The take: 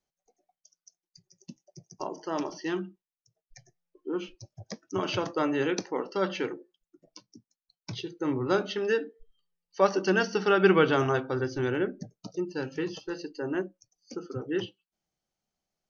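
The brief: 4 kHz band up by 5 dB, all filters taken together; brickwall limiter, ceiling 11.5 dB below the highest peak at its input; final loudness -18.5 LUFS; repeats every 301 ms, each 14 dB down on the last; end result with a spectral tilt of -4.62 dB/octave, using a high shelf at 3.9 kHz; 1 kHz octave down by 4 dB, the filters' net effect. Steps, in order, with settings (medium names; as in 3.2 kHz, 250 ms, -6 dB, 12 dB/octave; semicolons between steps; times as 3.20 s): peaking EQ 1 kHz -6.5 dB; treble shelf 3.9 kHz +5.5 dB; peaking EQ 4 kHz +4 dB; peak limiter -20 dBFS; feedback delay 301 ms, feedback 20%, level -14 dB; trim +14 dB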